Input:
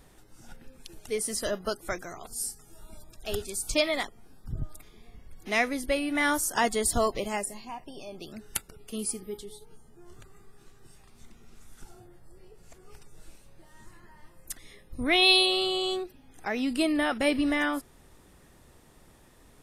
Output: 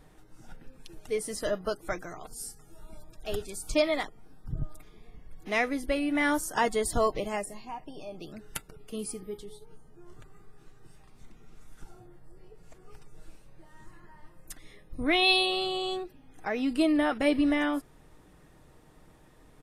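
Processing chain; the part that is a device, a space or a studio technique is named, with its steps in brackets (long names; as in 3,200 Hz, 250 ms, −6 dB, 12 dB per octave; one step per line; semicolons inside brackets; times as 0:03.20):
behind a face mask (high-shelf EQ 3,000 Hz −8 dB)
comb filter 6.5 ms, depth 32%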